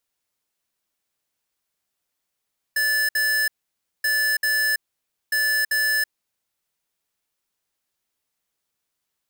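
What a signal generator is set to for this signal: beep pattern square 1.74 kHz, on 0.33 s, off 0.06 s, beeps 2, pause 0.56 s, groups 3, -21 dBFS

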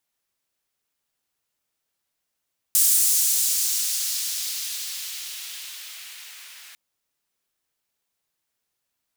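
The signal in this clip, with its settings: swept filtered noise pink, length 4.00 s highpass, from 8.5 kHz, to 2 kHz, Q 1.1, exponential, gain ramp -31.5 dB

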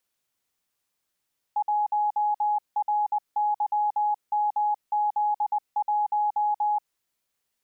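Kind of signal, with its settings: Morse "1RYMZ1" 20 wpm 837 Hz -21 dBFS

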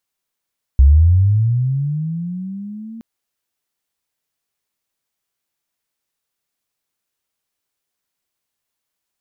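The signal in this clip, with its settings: sweep linear 64 Hz -> 230 Hz -4.5 dBFS -> -30 dBFS 2.22 s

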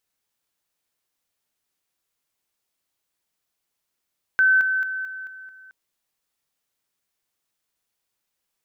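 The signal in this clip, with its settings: level ladder 1.53 kHz -13.5 dBFS, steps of -6 dB, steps 6, 0.22 s 0.00 s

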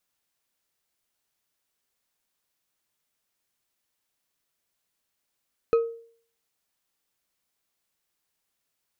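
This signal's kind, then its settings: glass hit bar, lowest mode 461 Hz, decay 0.52 s, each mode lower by 11.5 dB, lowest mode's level -14.5 dB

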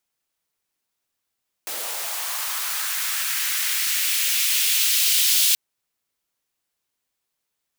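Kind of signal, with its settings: swept filtered noise white, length 3.88 s highpass, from 400 Hz, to 3.3 kHz, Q 1.5, linear, gain ramp +12 dB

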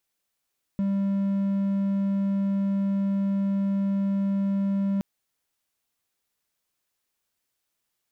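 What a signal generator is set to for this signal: tone triangle 197 Hz -20 dBFS 4.22 s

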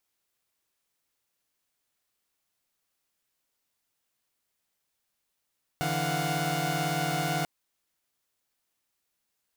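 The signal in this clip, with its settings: chord D3/E3/F5/F#5 saw, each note -30 dBFS 1.64 s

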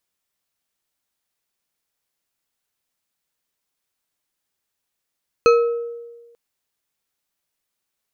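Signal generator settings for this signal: glass hit bar, lowest mode 470 Hz, decay 1.32 s, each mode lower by 6 dB, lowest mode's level -8.5 dB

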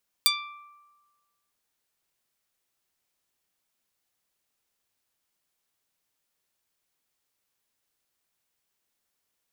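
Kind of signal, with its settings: plucked string D6, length 1.26 s, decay 1.37 s, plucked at 0.1, medium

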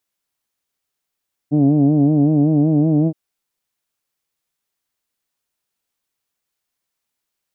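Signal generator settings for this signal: formant vowel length 1.62 s, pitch 143 Hz, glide +1.5 st, F1 270 Hz, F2 680 Hz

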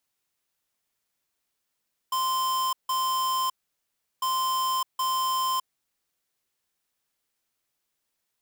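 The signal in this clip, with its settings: beep pattern square 1.04 kHz, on 0.61 s, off 0.16 s, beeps 2, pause 0.72 s, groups 2, -26 dBFS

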